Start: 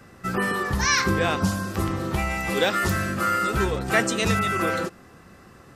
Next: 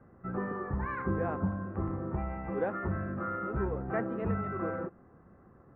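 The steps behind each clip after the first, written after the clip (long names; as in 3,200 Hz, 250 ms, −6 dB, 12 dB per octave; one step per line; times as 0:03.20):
Bessel low-pass filter 1,000 Hz, order 6
level −7.5 dB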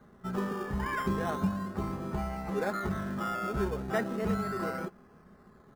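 parametric band 2,000 Hz +8.5 dB 1.4 octaves
comb filter 4.8 ms, depth 53%
in parallel at −9 dB: sample-and-hold swept by an LFO 17×, swing 60% 0.35 Hz
on the sum: level −3 dB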